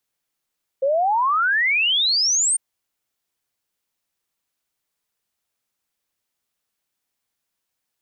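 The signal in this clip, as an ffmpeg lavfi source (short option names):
-f lavfi -i "aevalsrc='0.158*clip(min(t,1.75-t)/0.01,0,1)*sin(2*PI*520*1.75/log(9000/520)*(exp(log(9000/520)*t/1.75)-1))':d=1.75:s=44100"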